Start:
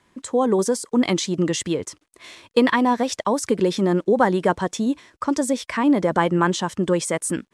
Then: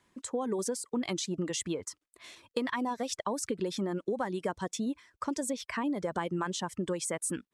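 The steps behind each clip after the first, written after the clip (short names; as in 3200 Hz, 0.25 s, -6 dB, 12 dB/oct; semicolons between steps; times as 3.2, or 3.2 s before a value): reverb removal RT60 0.58 s; high shelf 5800 Hz +5 dB; compressor, threshold -20 dBFS, peak gain reduction 9 dB; gain -8.5 dB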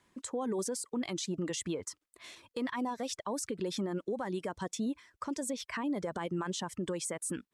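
limiter -27 dBFS, peak gain reduction 8 dB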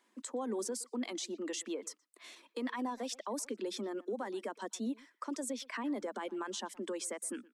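steep high-pass 210 Hz 96 dB/oct; wow and flutter 19 cents; speakerphone echo 0.12 s, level -20 dB; gain -2.5 dB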